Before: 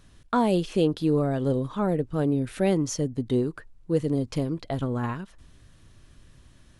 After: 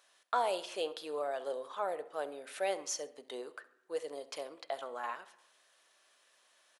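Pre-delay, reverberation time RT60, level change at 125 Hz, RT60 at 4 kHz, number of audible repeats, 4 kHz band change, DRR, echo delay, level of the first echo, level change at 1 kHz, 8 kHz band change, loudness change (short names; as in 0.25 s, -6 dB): 3 ms, 0.90 s, under -40 dB, 0.90 s, 1, -4.0 dB, 11.5 dB, 67 ms, -19.0 dB, -4.5 dB, -4.0 dB, -12.0 dB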